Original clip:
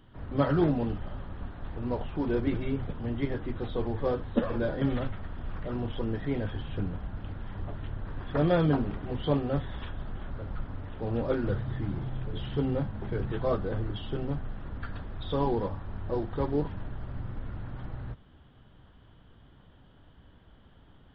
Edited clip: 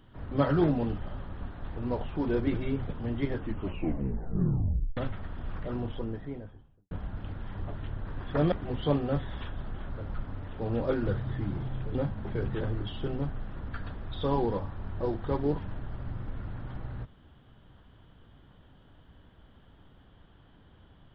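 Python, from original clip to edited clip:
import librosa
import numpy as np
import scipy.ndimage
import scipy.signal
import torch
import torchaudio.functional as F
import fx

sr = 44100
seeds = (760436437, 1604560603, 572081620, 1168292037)

y = fx.studio_fade_out(x, sr, start_s=5.53, length_s=1.38)
y = fx.edit(y, sr, fx.tape_stop(start_s=3.34, length_s=1.63),
    fx.cut(start_s=8.52, length_s=0.41),
    fx.cut(start_s=12.36, length_s=0.36),
    fx.cut(start_s=13.38, length_s=0.32), tone=tone)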